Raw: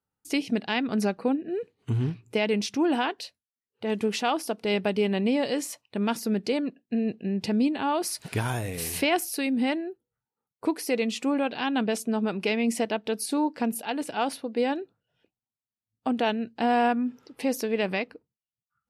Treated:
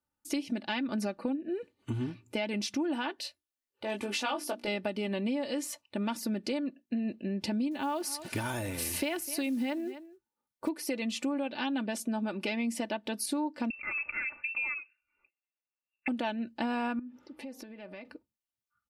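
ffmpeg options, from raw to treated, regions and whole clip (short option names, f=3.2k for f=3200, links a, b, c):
-filter_complex "[0:a]asettb=1/sr,asplit=3[a][b][c];[a]atrim=end=3.224[d];[b]atrim=start=3.22:end=4.68,asetpts=PTS-STARTPTS,afade=t=in:d=0.004:c=qsin,afade=t=out:st=1.456:d=0.004:c=qsin,equalizer=f=180:w=2.4:g=-12.5,bandreject=f=60:t=h:w=6,bandreject=f=120:t=h:w=6,bandreject=f=180:t=h:w=6,bandreject=f=240:t=h:w=6,bandreject=f=300:t=h:w=6,bandreject=f=360:t=h:w=6,asplit=2[e][f];[f]adelay=20,volume=-4dB[g];[e][g]amix=inputs=2:normalize=0,atrim=end_sample=64386[h];[c]atrim=start=4.676[i];[d][h]acrossfade=d=0.004:c1=hsin:c2=qsin[j];[j][i]acrossfade=d=0.004:c1=qsin:c2=hsin,asettb=1/sr,asplit=3[k][l][m];[k]atrim=end=7.714[n];[l]atrim=start=7.71:end=10.69,asetpts=PTS-STARTPTS,afade=t=in:d=0.004:c=qsin,afade=t=out:st=2.976:d=0.004:c=qsin,acrusher=bits=7:mode=log:mix=0:aa=0.000001,aecho=1:1:252:0.0944,atrim=end_sample=131418[o];[m]atrim=start=10.686[p];[n][o]acrossfade=d=0.004:c1=hsin:c2=qsin[q];[q][p]acrossfade=d=0.004:c1=qsin:c2=hsin,asettb=1/sr,asplit=3[r][s][t];[r]atrim=end=13.704[u];[s]atrim=start=13.7:end=16.08,asetpts=PTS-STARTPTS,afade=t=in:d=0.004:c=qsin,afade=t=out:st=2.376:d=0.004:c=qsin,acompressor=threshold=-30dB:ratio=3:attack=3.2:release=140:knee=1:detection=peak,acrusher=bits=8:mode=log:mix=0:aa=0.000001,lowpass=f=2.5k:t=q:w=0.5098,lowpass=f=2.5k:t=q:w=0.6013,lowpass=f=2.5k:t=q:w=0.9,lowpass=f=2.5k:t=q:w=2.563,afreqshift=-2900[v];[t]atrim=start=16.076[w];[u][v]acrossfade=d=0.004:c1=hsin:c2=qsin[x];[x][w]acrossfade=d=0.004:c1=qsin:c2=hsin,asettb=1/sr,asplit=3[y][z][aa];[y]atrim=end=16.994[ab];[z]atrim=start=16.99:end=18.05,asetpts=PTS-STARTPTS,afade=t=in:d=0.004:c=qsin,afade=t=out:st=1.056:d=0.004:c=qsin,highshelf=f=4.3k:g=-10.5,bandreject=f=155.1:t=h:w=4,bandreject=f=310.2:t=h:w=4,bandreject=f=465.3:t=h:w=4,bandreject=f=620.4:t=h:w=4,bandreject=f=775.5:t=h:w=4,bandreject=f=930.6:t=h:w=4,bandreject=f=1.0857k:t=h:w=4,acompressor=threshold=-41dB:ratio=6:attack=3.2:release=140:knee=1:detection=peak[ac];[aa]atrim=start=18.046[ad];[ab][ac]acrossfade=d=0.004:c1=hsin:c2=qsin[ae];[ae][ad]acrossfade=d=0.004:c1=qsin:c2=hsin,aecho=1:1:3.4:0.66,acompressor=threshold=-27dB:ratio=5,volume=-2.5dB"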